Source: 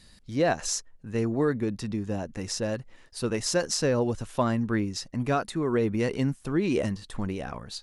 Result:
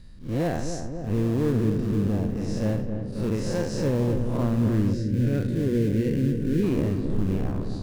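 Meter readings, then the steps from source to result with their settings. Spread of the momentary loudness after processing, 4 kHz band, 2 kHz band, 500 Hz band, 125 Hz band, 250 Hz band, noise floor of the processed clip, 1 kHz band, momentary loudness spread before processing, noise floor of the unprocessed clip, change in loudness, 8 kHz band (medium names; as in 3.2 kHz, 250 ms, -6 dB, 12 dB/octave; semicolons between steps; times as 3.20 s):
6 LU, -8.0 dB, -5.5 dB, -0.5 dB, +7.5 dB, +4.5 dB, -33 dBFS, -5.5 dB, 8 LU, -56 dBFS, +3.0 dB, -10.5 dB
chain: spectral blur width 145 ms; tilt EQ -2.5 dB/octave; in parallel at -12 dB: sample-rate reducer 1.4 kHz, jitter 20%; on the sum: peak limiter -16 dBFS, peak gain reduction 6 dB; on a send: filtered feedback delay 266 ms, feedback 77%, low-pass 1.2 kHz, level -7 dB; on the sum: time-frequency box 4.93–6.63 s, 590–1400 Hz -17 dB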